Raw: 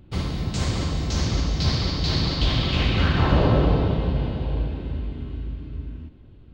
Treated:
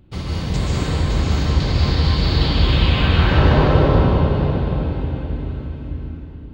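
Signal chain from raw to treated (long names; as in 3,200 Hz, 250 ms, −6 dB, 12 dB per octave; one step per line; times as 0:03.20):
0:00.56–0:03.13: parametric band 5,800 Hz −12 dB 0.41 octaves
dense smooth reverb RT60 3.2 s, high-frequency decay 0.55×, pre-delay 115 ms, DRR −6 dB
level −1 dB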